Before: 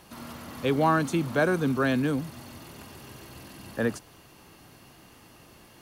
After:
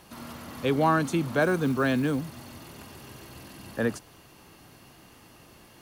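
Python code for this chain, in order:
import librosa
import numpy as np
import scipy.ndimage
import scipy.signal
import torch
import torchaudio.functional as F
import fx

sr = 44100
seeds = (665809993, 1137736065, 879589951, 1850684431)

y = fx.quant_float(x, sr, bits=4, at=(1.41, 2.57))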